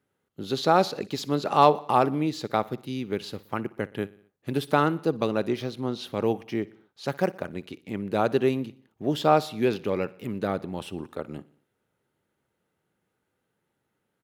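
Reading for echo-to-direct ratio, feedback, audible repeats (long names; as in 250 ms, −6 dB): −19.5 dB, 57%, 3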